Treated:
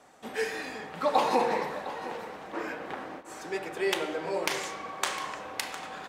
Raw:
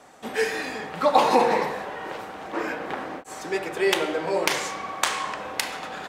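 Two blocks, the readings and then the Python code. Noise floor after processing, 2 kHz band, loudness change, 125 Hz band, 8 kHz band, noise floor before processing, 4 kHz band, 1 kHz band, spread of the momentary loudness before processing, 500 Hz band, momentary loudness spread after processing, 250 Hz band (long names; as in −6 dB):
−47 dBFS, −6.5 dB, −6.5 dB, −6.5 dB, −6.5 dB, −43 dBFS, −6.5 dB, −6.5 dB, 13 LU, −6.5 dB, 12 LU, −6.5 dB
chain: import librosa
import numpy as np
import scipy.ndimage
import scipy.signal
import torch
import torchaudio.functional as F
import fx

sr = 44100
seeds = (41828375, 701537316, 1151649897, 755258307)

y = x + 10.0 ** (-14.5 / 20.0) * np.pad(x, (int(707 * sr / 1000.0), 0))[:len(x)]
y = F.gain(torch.from_numpy(y), -6.5).numpy()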